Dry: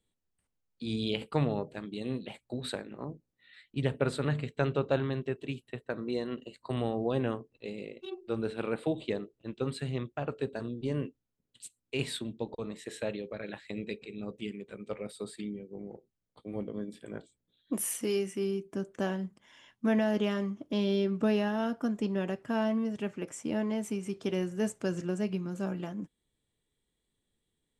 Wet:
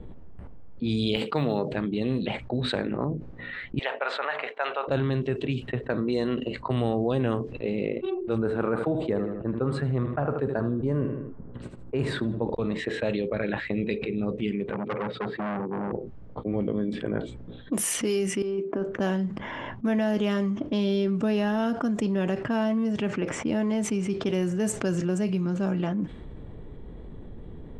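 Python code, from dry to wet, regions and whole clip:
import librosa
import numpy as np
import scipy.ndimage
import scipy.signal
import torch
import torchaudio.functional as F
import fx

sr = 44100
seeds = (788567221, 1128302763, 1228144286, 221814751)

y = fx.chain(x, sr, fx.highpass(hz=180.0, slope=12),
    fx.peak_eq(hz=4000.0, db=5.5, octaves=0.37),
    fx.resample_bad(factor=2, down='filtered', up='hold'), at=(1.16, 1.71))
y = fx.chain(y, sr, fx.ellip_bandpass(low_hz=700.0, high_hz=7600.0, order=3, stop_db=80),
    fx.high_shelf(hz=5600.0, db=-10.0), at=(3.79, 4.88))
y = fx.chain(y, sr, fx.high_shelf_res(hz=2000.0, db=-12.0, q=1.5),
    fx.echo_feedback(ms=78, feedback_pct=27, wet_db=-13.0), at=(8.38, 12.5))
y = fx.chain(y, sr, fx.highpass(hz=100.0, slope=24),
    fx.air_absorb(metres=200.0),
    fx.transformer_sat(knee_hz=3300.0), at=(14.71, 15.93))
y = fx.chain(y, sr, fx.highpass(hz=340.0, slope=12),
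    fx.high_shelf(hz=2400.0, db=-10.5),
    fx.over_compress(threshold_db=-38.0, ratio=-0.5), at=(18.42, 18.86))
y = fx.env_lowpass(y, sr, base_hz=860.0, full_db=-27.0)
y = fx.low_shelf(y, sr, hz=110.0, db=6.5)
y = fx.env_flatten(y, sr, amount_pct=70)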